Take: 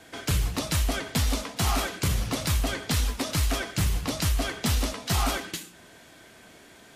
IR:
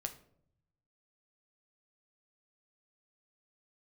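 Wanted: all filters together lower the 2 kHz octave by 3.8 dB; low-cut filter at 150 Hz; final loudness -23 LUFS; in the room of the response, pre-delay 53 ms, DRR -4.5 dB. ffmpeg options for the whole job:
-filter_complex "[0:a]highpass=150,equalizer=f=2000:t=o:g=-5,asplit=2[s0][s1];[1:a]atrim=start_sample=2205,adelay=53[s2];[s1][s2]afir=irnorm=-1:irlink=0,volume=1.88[s3];[s0][s3]amix=inputs=2:normalize=0,volume=1.26"

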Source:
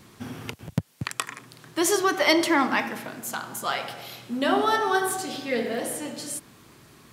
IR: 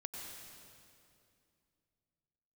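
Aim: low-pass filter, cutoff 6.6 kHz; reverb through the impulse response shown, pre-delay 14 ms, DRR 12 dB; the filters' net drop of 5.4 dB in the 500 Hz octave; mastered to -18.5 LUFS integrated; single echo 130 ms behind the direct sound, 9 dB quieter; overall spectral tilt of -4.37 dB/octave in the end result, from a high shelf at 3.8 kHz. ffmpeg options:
-filter_complex "[0:a]lowpass=6600,equalizer=f=500:t=o:g=-7.5,highshelf=f=3800:g=-9,aecho=1:1:130:0.355,asplit=2[s0][s1];[1:a]atrim=start_sample=2205,adelay=14[s2];[s1][s2]afir=irnorm=-1:irlink=0,volume=0.299[s3];[s0][s3]amix=inputs=2:normalize=0,volume=3.16"

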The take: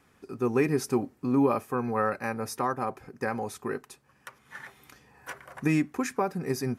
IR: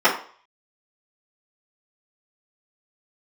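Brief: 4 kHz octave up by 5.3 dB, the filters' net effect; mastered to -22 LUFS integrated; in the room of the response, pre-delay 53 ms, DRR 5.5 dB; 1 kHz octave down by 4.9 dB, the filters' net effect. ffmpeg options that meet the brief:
-filter_complex "[0:a]equalizer=f=1000:t=o:g=-7,equalizer=f=4000:t=o:g=7.5,asplit=2[s0][s1];[1:a]atrim=start_sample=2205,adelay=53[s2];[s1][s2]afir=irnorm=-1:irlink=0,volume=0.0422[s3];[s0][s3]amix=inputs=2:normalize=0,volume=2.37"

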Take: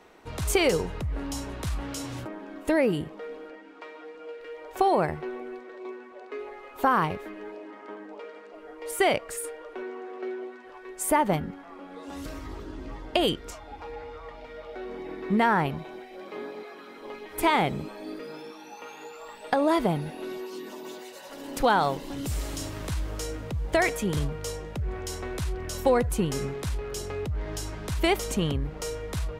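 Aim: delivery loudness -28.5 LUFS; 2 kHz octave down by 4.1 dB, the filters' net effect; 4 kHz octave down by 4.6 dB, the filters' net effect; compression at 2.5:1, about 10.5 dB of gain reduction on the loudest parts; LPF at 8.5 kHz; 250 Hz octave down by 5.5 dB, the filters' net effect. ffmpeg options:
-af "lowpass=8500,equalizer=f=250:t=o:g=-8,equalizer=f=2000:t=o:g=-4,equalizer=f=4000:t=o:g=-4.5,acompressor=threshold=0.0158:ratio=2.5,volume=3.55"

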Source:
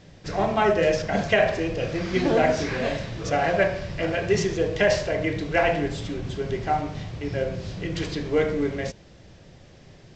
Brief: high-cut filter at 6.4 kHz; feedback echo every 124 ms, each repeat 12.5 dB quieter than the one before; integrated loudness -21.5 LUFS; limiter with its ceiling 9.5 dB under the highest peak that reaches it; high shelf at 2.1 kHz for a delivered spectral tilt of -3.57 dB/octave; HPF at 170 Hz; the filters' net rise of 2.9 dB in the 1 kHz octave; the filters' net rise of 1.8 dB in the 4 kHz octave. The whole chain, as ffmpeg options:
-af "highpass=170,lowpass=6400,equalizer=f=1000:t=o:g=5,highshelf=f=2100:g=-4.5,equalizer=f=4000:t=o:g=7.5,alimiter=limit=0.178:level=0:latency=1,aecho=1:1:124|248|372:0.237|0.0569|0.0137,volume=1.78"

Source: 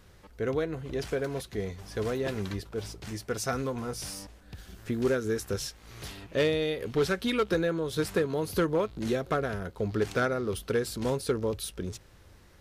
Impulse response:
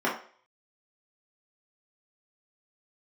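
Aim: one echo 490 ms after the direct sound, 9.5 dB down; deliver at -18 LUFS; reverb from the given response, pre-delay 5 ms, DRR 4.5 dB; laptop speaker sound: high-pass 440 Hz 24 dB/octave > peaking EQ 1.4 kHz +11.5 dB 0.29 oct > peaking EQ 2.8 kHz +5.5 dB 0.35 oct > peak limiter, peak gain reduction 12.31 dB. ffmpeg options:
-filter_complex "[0:a]aecho=1:1:490:0.335,asplit=2[s0][s1];[1:a]atrim=start_sample=2205,adelay=5[s2];[s1][s2]afir=irnorm=-1:irlink=0,volume=0.126[s3];[s0][s3]amix=inputs=2:normalize=0,highpass=f=440:w=0.5412,highpass=f=440:w=1.3066,equalizer=f=1400:t=o:w=0.29:g=11.5,equalizer=f=2800:t=o:w=0.35:g=5.5,volume=4.73,alimiter=limit=0.531:level=0:latency=1"

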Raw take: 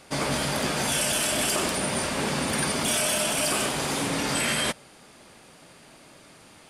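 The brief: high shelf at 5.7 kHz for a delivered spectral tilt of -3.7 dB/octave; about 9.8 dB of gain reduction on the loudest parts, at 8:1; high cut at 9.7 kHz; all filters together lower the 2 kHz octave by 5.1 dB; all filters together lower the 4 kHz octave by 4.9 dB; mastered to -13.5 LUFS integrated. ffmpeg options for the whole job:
-af "lowpass=9700,equalizer=f=2000:t=o:g=-5.5,equalizer=f=4000:t=o:g=-8,highshelf=f=5700:g=8,acompressor=threshold=0.0251:ratio=8,volume=10.6"

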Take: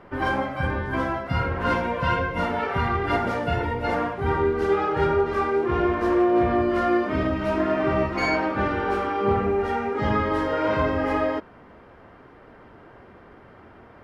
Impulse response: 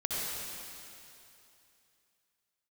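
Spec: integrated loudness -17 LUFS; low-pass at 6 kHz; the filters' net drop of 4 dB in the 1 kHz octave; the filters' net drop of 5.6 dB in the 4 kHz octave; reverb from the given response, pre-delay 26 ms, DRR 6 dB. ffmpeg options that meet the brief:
-filter_complex "[0:a]lowpass=6000,equalizer=f=1000:t=o:g=-5,equalizer=f=4000:t=o:g=-7.5,asplit=2[s0][s1];[1:a]atrim=start_sample=2205,adelay=26[s2];[s1][s2]afir=irnorm=-1:irlink=0,volume=0.237[s3];[s0][s3]amix=inputs=2:normalize=0,volume=2.37"

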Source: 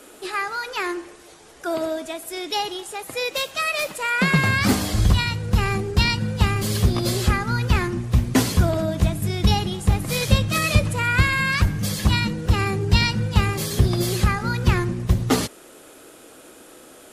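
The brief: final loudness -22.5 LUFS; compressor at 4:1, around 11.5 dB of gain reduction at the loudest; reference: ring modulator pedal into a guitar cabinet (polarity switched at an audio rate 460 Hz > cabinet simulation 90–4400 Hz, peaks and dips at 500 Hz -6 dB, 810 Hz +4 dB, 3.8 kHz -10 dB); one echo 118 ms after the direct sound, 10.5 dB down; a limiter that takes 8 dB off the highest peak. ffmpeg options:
-af "acompressor=threshold=0.0501:ratio=4,alimiter=limit=0.0841:level=0:latency=1,aecho=1:1:118:0.299,aeval=exprs='val(0)*sgn(sin(2*PI*460*n/s))':c=same,highpass=90,equalizer=f=500:t=q:w=4:g=-6,equalizer=f=810:t=q:w=4:g=4,equalizer=f=3800:t=q:w=4:g=-10,lowpass=f=4400:w=0.5412,lowpass=f=4400:w=1.3066,volume=2.82"

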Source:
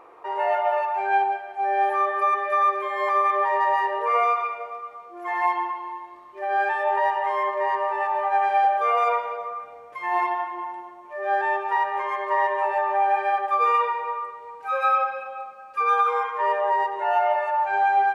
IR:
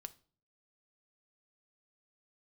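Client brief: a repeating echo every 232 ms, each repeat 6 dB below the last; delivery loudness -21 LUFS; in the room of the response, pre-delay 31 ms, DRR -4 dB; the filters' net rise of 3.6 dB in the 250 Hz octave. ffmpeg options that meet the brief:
-filter_complex "[0:a]equalizer=f=250:t=o:g=8.5,aecho=1:1:232|464|696|928|1160|1392:0.501|0.251|0.125|0.0626|0.0313|0.0157,asplit=2[s0][s1];[1:a]atrim=start_sample=2205,adelay=31[s2];[s1][s2]afir=irnorm=-1:irlink=0,volume=2.82[s3];[s0][s3]amix=inputs=2:normalize=0,volume=0.708"

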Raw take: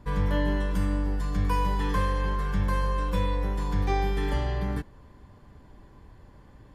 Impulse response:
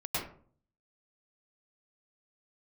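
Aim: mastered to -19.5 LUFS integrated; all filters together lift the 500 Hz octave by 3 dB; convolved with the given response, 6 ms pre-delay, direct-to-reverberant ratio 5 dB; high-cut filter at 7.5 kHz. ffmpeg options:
-filter_complex "[0:a]lowpass=7500,equalizer=f=500:t=o:g=3.5,asplit=2[s0][s1];[1:a]atrim=start_sample=2205,adelay=6[s2];[s1][s2]afir=irnorm=-1:irlink=0,volume=0.282[s3];[s0][s3]amix=inputs=2:normalize=0,volume=2.37"

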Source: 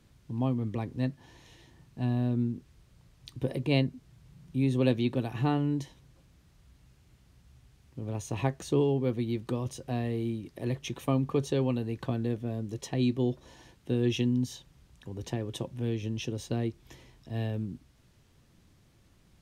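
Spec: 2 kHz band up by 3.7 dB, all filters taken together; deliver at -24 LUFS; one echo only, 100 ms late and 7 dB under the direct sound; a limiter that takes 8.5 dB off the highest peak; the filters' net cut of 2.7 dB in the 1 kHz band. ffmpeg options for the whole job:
-af "equalizer=f=1000:t=o:g=-5,equalizer=f=2000:t=o:g=6,alimiter=limit=0.0891:level=0:latency=1,aecho=1:1:100:0.447,volume=2.66"

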